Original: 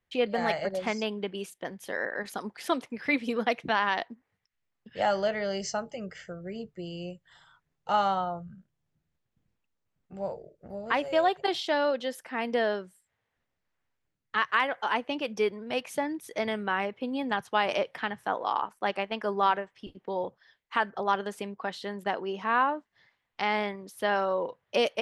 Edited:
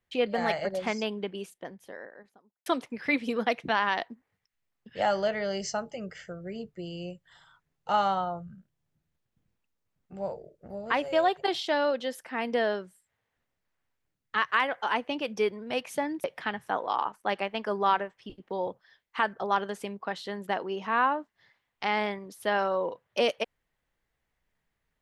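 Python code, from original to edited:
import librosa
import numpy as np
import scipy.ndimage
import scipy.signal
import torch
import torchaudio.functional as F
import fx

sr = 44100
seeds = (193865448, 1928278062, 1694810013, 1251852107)

y = fx.studio_fade_out(x, sr, start_s=1.01, length_s=1.65)
y = fx.edit(y, sr, fx.cut(start_s=16.24, length_s=1.57), tone=tone)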